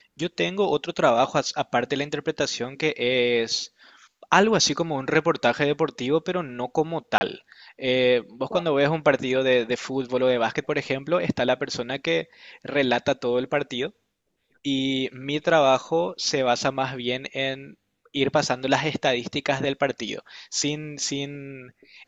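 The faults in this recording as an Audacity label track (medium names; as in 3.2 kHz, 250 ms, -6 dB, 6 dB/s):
7.180000	7.210000	dropout 30 ms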